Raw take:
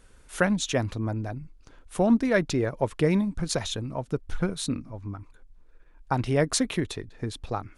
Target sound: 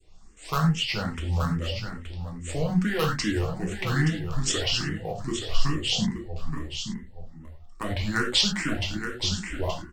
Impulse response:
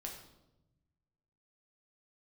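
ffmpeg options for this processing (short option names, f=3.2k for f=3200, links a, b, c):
-filter_complex "[0:a]adynamicequalizer=threshold=0.01:dfrequency=1600:dqfactor=0.75:tfrequency=1600:tqfactor=0.75:attack=5:release=100:ratio=0.375:range=2.5:mode=boostabove:tftype=bell,acrossover=split=150|1300|2100[a][b][c][d];[b]alimiter=limit=-21.5dB:level=0:latency=1[e];[c]acrusher=bits=5:dc=4:mix=0:aa=0.000001[f];[d]dynaudnorm=f=120:g=13:m=7.5dB[g];[a][e][f][g]amix=inputs=4:normalize=0,asetrate=34530,aresample=44100,aecho=1:1:874:0.398[h];[1:a]atrim=start_sample=2205,afade=t=out:st=0.16:d=0.01,atrim=end_sample=7497[i];[h][i]afir=irnorm=-1:irlink=0,asplit=2[j][k];[k]afreqshift=2.4[l];[j][l]amix=inputs=2:normalize=1,volume=5dB"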